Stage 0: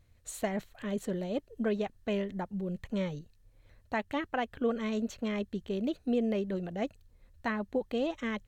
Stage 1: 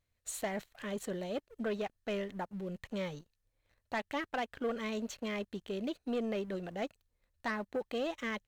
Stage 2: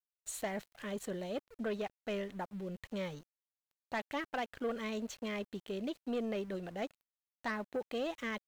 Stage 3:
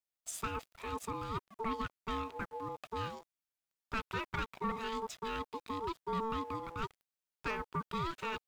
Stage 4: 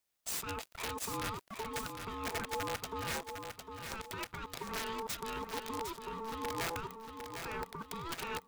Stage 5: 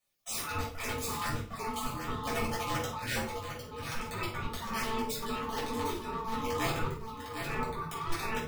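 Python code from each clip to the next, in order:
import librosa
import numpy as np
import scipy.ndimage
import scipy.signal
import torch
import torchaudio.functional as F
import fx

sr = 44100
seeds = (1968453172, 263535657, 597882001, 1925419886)

y1 = fx.low_shelf(x, sr, hz=390.0, db=-9.5)
y1 = fx.leveller(y1, sr, passes=2)
y1 = y1 * librosa.db_to_amplitude(-6.0)
y2 = np.where(np.abs(y1) >= 10.0 ** (-57.0 / 20.0), y1, 0.0)
y2 = y2 * librosa.db_to_amplitude(-1.5)
y3 = y2 * np.sin(2.0 * np.pi * 670.0 * np.arange(len(y2)) / sr)
y3 = y3 * librosa.db_to_amplitude(3.0)
y4 = fx.over_compress(y3, sr, threshold_db=-44.0, ratio=-1.0)
y4 = (np.mod(10.0 ** (34.5 / 20.0) * y4 + 1.0, 2.0) - 1.0) / 10.0 ** (34.5 / 20.0)
y4 = fx.echo_feedback(y4, sr, ms=755, feedback_pct=43, wet_db=-7.0)
y4 = y4 * librosa.db_to_amplitude(4.5)
y5 = fx.spec_dropout(y4, sr, seeds[0], share_pct=23)
y5 = fx.room_shoebox(y5, sr, seeds[1], volume_m3=430.0, walls='furnished', distance_m=6.1)
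y5 = y5 * librosa.db_to_amplitude(-3.5)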